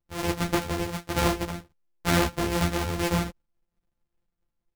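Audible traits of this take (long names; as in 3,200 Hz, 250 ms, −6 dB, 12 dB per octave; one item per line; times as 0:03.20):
a buzz of ramps at a fixed pitch in blocks of 256 samples
sample-and-hold tremolo
a shimmering, thickened sound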